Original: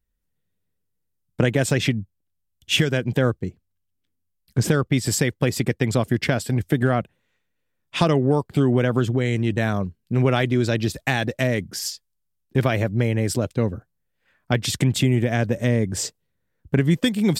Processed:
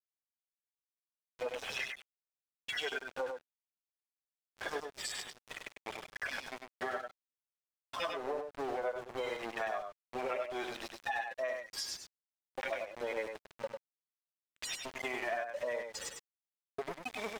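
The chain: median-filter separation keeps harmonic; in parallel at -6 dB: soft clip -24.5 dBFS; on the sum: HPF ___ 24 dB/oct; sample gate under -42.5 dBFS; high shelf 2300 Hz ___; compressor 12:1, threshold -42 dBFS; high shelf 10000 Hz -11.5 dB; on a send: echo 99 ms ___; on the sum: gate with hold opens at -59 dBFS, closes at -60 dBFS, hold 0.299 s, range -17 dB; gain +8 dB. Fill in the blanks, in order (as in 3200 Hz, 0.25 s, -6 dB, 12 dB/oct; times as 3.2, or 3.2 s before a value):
660 Hz, -7 dB, -5.5 dB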